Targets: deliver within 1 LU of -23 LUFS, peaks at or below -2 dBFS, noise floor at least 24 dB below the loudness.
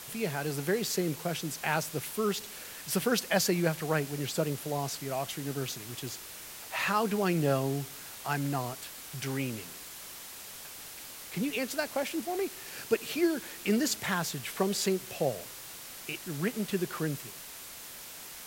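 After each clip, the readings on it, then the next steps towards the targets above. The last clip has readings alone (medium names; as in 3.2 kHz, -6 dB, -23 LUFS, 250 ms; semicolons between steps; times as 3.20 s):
noise floor -46 dBFS; noise floor target -57 dBFS; loudness -32.5 LUFS; peak level -13.5 dBFS; loudness target -23.0 LUFS
-> noise print and reduce 11 dB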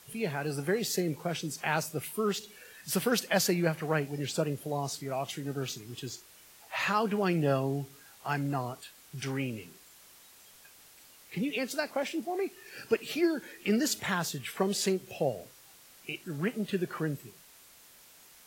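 noise floor -56 dBFS; loudness -32.0 LUFS; peak level -13.5 dBFS; loudness target -23.0 LUFS
-> trim +9 dB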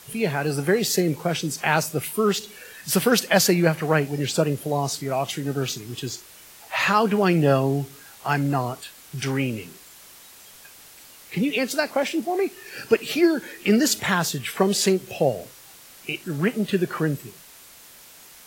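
loudness -23.0 LUFS; peak level -4.5 dBFS; noise floor -47 dBFS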